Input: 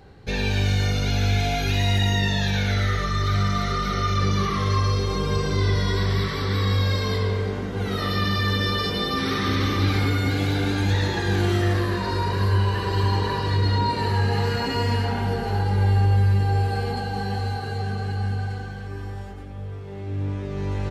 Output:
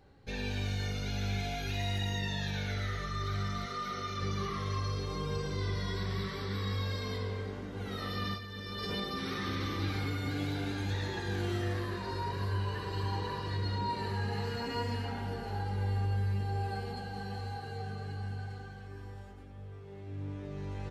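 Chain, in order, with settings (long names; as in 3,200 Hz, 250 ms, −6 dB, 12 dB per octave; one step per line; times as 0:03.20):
0:03.65–0:04.20: high-pass filter 330 Hz → 140 Hz 6 dB per octave
0:08.34–0:09.03: compressor whose output falls as the input rises −26 dBFS, ratio −0.5
flanger 0.13 Hz, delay 3.4 ms, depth 4.9 ms, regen +72%
level −7.5 dB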